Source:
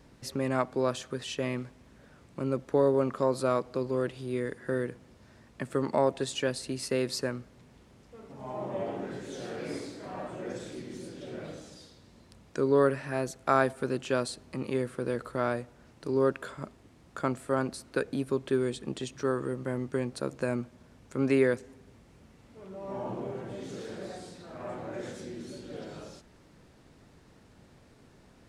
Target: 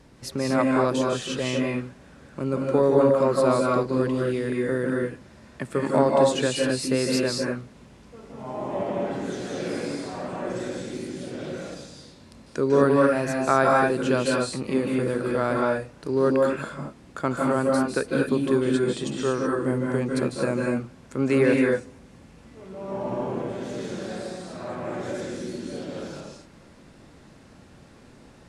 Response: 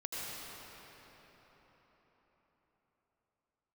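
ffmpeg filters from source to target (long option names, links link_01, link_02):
-filter_complex "[1:a]atrim=start_sample=2205,afade=type=out:start_time=0.18:duration=0.01,atrim=end_sample=8379,asetrate=22932,aresample=44100[link_01];[0:a][link_01]afir=irnorm=-1:irlink=0,volume=5dB"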